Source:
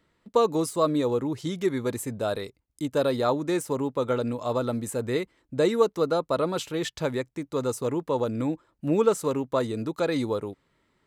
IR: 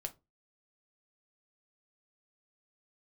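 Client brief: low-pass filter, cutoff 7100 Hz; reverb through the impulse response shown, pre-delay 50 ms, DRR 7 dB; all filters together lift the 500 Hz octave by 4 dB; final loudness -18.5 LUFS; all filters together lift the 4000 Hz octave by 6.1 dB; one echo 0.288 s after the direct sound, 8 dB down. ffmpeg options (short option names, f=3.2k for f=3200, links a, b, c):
-filter_complex "[0:a]lowpass=7.1k,equalizer=f=500:t=o:g=4.5,equalizer=f=4k:t=o:g=7,aecho=1:1:288:0.398,asplit=2[a][b];[1:a]atrim=start_sample=2205,adelay=50[c];[b][c]afir=irnorm=-1:irlink=0,volume=-5dB[d];[a][d]amix=inputs=2:normalize=0,volume=4dB"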